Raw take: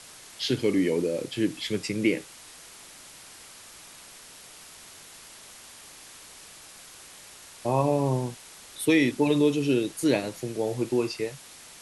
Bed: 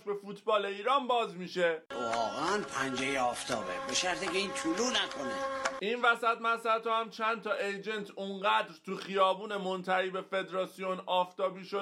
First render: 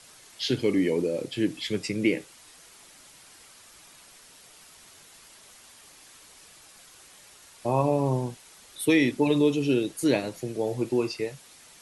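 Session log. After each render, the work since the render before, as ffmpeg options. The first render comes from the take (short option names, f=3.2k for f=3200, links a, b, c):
-af "afftdn=nr=6:nf=-48"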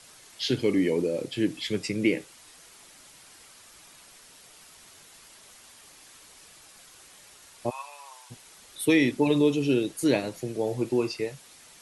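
-filter_complex "[0:a]asplit=3[a][b][c];[a]afade=t=out:st=7.69:d=0.02[d];[b]highpass=f=1.3k:w=0.5412,highpass=f=1.3k:w=1.3066,afade=t=in:st=7.69:d=0.02,afade=t=out:st=8.3:d=0.02[e];[c]afade=t=in:st=8.3:d=0.02[f];[d][e][f]amix=inputs=3:normalize=0"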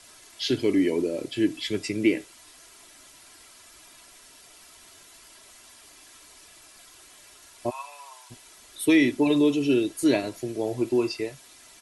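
-af "aecho=1:1:3:0.47"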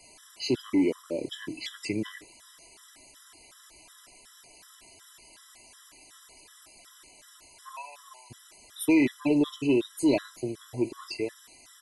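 -af "asoftclip=type=tanh:threshold=-14dB,afftfilt=real='re*gt(sin(2*PI*2.7*pts/sr)*(1-2*mod(floor(b*sr/1024/1000),2)),0)':imag='im*gt(sin(2*PI*2.7*pts/sr)*(1-2*mod(floor(b*sr/1024/1000),2)),0)':win_size=1024:overlap=0.75"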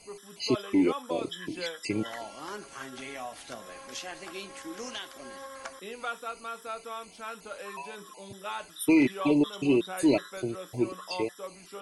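-filter_complex "[1:a]volume=-8.5dB[a];[0:a][a]amix=inputs=2:normalize=0"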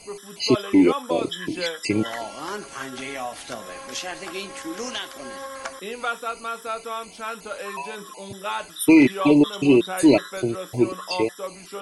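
-af "volume=8dB"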